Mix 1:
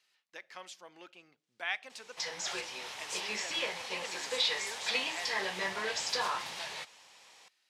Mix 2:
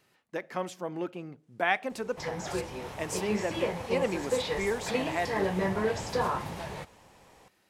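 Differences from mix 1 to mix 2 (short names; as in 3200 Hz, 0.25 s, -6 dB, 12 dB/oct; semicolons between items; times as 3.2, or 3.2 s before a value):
background -9.0 dB; master: remove band-pass 4300 Hz, Q 1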